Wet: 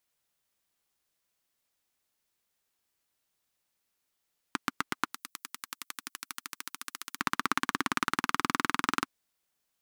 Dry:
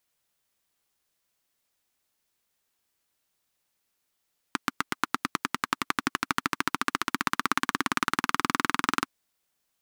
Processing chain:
0:05.13–0:07.19: first-order pre-emphasis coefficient 0.9
level −3 dB

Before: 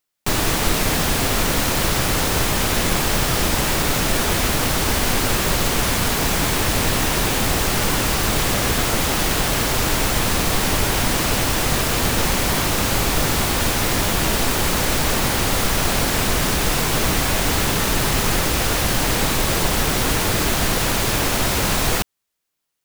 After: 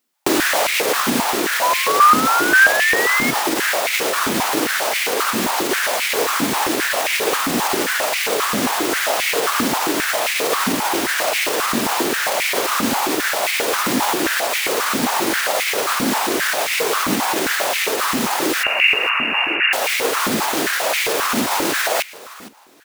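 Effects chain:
brickwall limiter −13.5 dBFS, peak gain reduction 8.5 dB
speech leveller 2 s
0:01.62–0:03.31: sound drawn into the spectrogram rise 970–2,200 Hz −24 dBFS
0:18.63–0:19.73: voice inversion scrambler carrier 2,800 Hz
repeating echo 461 ms, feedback 24%, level −18 dB
high-pass on a step sequencer 7.5 Hz 240–2,200 Hz
level +2.5 dB

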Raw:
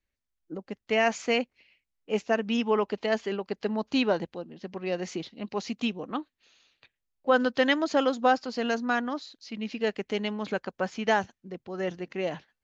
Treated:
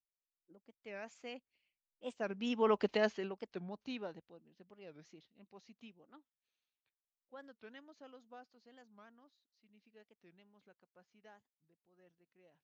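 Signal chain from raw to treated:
source passing by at 0:02.85, 11 m/s, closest 1.8 metres
wow of a warped record 45 rpm, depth 250 cents
level −2 dB

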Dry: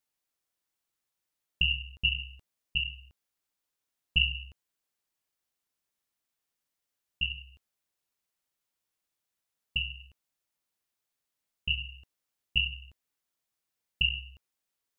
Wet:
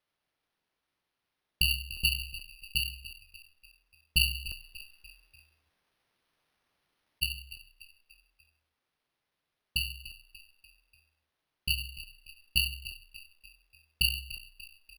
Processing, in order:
0:04.48–0:07.22: compressor whose output falls as the input rises −46 dBFS, ratio −1
echo with shifted repeats 293 ms, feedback 49%, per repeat −36 Hz, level −15.5 dB
bad sample-rate conversion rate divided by 6×, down none, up hold

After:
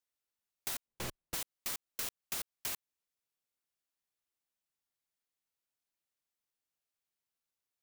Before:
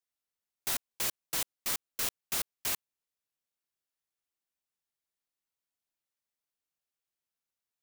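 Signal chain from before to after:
0:00.86–0:01.34: spectral tilt −3 dB per octave
downward compressor, threshold −34 dBFS, peak gain reduction 6.5 dB
level −1 dB

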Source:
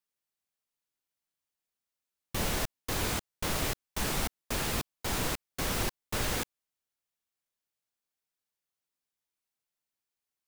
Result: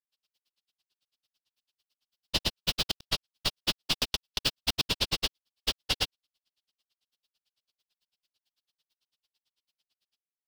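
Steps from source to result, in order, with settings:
granular cloud 58 ms, grains 9 per second, spray 506 ms, pitch spread up and down by 0 semitones
downward compressor 3 to 1, threshold −39 dBFS, peak gain reduction 8 dB
flat-topped bell 3,800 Hz +14 dB 1.2 octaves
level +7.5 dB

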